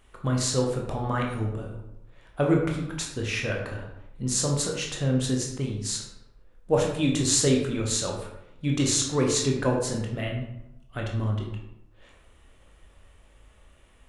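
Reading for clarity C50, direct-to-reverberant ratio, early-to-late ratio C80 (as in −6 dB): 4.0 dB, −0.5 dB, 7.0 dB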